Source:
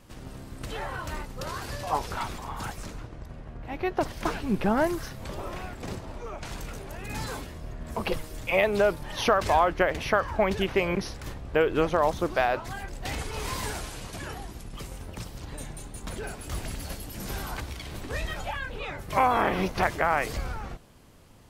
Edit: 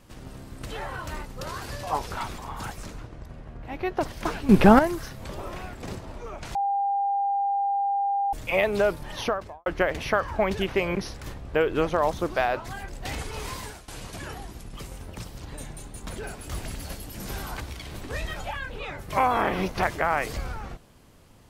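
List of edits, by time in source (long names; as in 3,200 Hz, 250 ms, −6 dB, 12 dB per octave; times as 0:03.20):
0:04.49–0:04.79: clip gain +10.5 dB
0:06.55–0:08.33: beep over 799 Hz −22 dBFS
0:09.08–0:09.66: fade out and dull
0:13.16–0:13.88: fade out equal-power, to −18.5 dB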